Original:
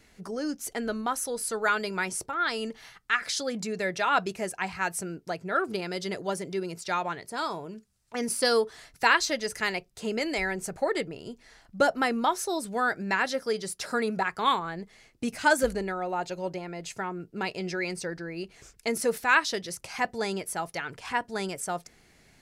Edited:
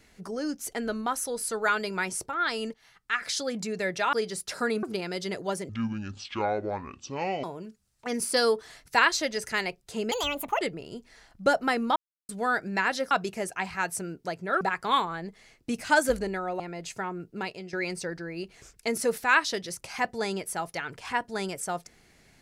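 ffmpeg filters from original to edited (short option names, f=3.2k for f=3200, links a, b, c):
-filter_complex "[0:a]asplit=14[a][b][c][d][e][f][g][h][i][j][k][l][m][n];[a]atrim=end=2.74,asetpts=PTS-STARTPTS,afade=t=out:st=2.736:d=0.004:c=hsin:silence=0.141254[o];[b]atrim=start=2.74:end=4.132,asetpts=PTS-STARTPTS,afade=t=in:d=0.57:silence=0.141254[p];[c]atrim=start=13.448:end=14.152[q];[d]atrim=start=5.628:end=6.494[r];[e]atrim=start=6.49:end=7.52,asetpts=PTS-STARTPTS,asetrate=26019,aresample=44100,atrim=end_sample=76988,asetpts=PTS-STARTPTS[s];[f]atrim=start=7.516:end=10.204[t];[g]atrim=start=10.2:end=10.95,asetpts=PTS-STARTPTS,asetrate=67032,aresample=44100[u];[h]atrim=start=10.946:end=12.3,asetpts=PTS-STARTPTS,afade=t=out:st=1.35:d=0.004:c=hsin[v];[i]atrim=start=12.3:end=12.63,asetpts=PTS-STARTPTS,volume=0[w];[j]atrim=start=12.63:end=13.452,asetpts=PTS-STARTPTS,afade=t=in:d=0.004:c=hsin[x];[k]atrim=start=4.128:end=5.632[y];[l]atrim=start=14.148:end=16.142[z];[m]atrim=start=16.598:end=17.73,asetpts=PTS-STARTPTS,afade=t=out:st=0.712:d=0.42:silence=0.237137[aa];[n]atrim=start=17.73,asetpts=PTS-STARTPTS,afade=t=in:d=0.004:c=hsin:silence=0.237137[ab];[o][p]concat=n=2:v=0:a=1[ac];[ac][q]acrossfade=d=0.004:c1=hsin:c2=hsin[ad];[ad][r]acrossfade=d=0.004:c1=hsin:c2=hsin[ae];[ae][s]acrossfade=d=0.004:c1=hsin:c2=hsin[af];[af][t]acrossfade=d=0.004:c1=hsin:c2=hsin[ag];[ag][u]acrossfade=d=0.004:c1=hsin:c2=hsin[ah];[v][w][x]concat=n=3:v=0:a=1[ai];[ah][ai]acrossfade=d=0.004:c1=hsin:c2=hsin[aj];[aj][y]acrossfade=d=0.004:c1=hsin:c2=hsin[ak];[ak][z]acrossfade=d=0.004:c1=hsin:c2=hsin[al];[aa][ab]concat=n=2:v=0:a=1[am];[al][am]acrossfade=d=0.004:c1=hsin:c2=hsin"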